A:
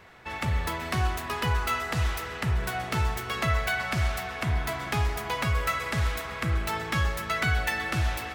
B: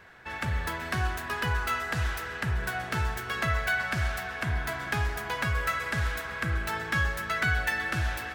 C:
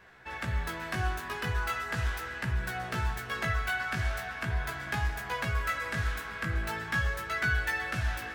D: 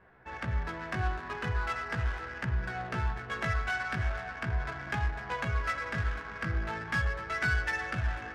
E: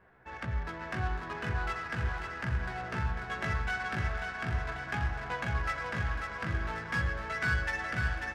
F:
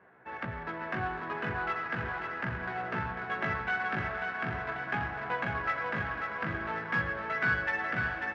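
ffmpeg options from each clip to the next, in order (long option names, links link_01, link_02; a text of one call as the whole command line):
ffmpeg -i in.wav -af "equalizer=frequency=1600:width=6.3:gain=11,volume=-3dB" out.wav
ffmpeg -i in.wav -af "flanger=delay=15.5:depth=3.5:speed=0.4" out.wav
ffmpeg -i in.wav -af "adynamicsmooth=sensitivity=4:basefreq=1400" out.wav
ffmpeg -i in.wav -af "aecho=1:1:542|1084|1626|2168|2710|3252|3794:0.562|0.315|0.176|0.0988|0.0553|0.031|0.0173,volume=-2dB" out.wav
ffmpeg -i in.wav -af "highpass=170,lowpass=2600,volume=3.5dB" out.wav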